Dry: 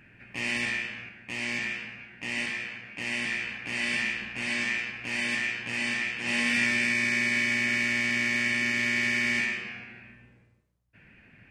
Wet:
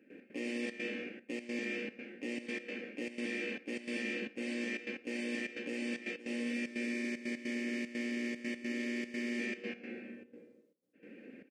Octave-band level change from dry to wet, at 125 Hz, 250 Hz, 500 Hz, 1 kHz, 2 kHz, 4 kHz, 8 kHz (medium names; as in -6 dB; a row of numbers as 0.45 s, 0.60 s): under -15 dB, -1.5 dB, +1.5 dB, -16.0 dB, -15.0 dB, -14.0 dB, -14.0 dB